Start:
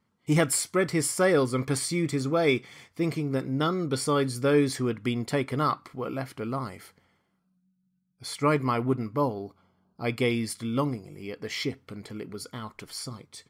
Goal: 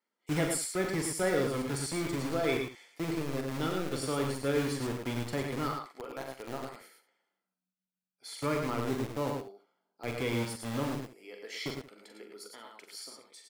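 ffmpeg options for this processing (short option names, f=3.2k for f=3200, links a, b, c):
-filter_complex "[0:a]bandreject=f=1.1k:w=6.5,acrossover=split=310|1000|3500[a][b][c][d];[a]acrusher=bits=4:mix=0:aa=0.000001[e];[e][b][c][d]amix=inputs=4:normalize=0,aecho=1:1:43|58|94|109|178:0.473|0.119|0.316|0.531|0.133,volume=-8.5dB"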